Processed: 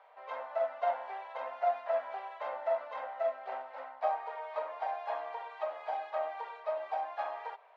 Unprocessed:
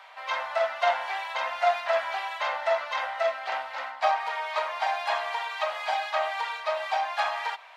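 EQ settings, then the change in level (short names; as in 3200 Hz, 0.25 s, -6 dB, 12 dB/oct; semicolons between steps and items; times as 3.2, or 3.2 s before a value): band-pass 390 Hz, Q 2; +2.5 dB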